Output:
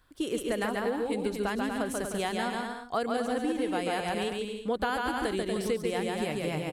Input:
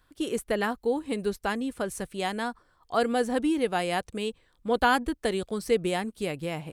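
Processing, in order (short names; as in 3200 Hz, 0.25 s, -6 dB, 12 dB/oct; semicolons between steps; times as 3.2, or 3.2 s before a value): bouncing-ball echo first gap 0.14 s, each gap 0.7×, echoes 5; compressor, threshold -26 dBFS, peak gain reduction 9 dB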